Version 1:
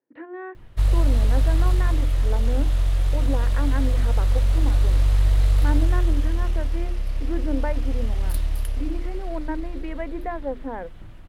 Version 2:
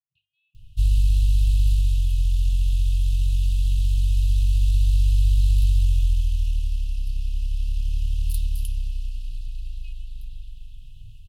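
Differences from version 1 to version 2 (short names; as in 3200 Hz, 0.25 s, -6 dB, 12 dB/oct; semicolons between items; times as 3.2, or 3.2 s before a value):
speech -5.5 dB; master: add brick-wall FIR band-stop 150–2500 Hz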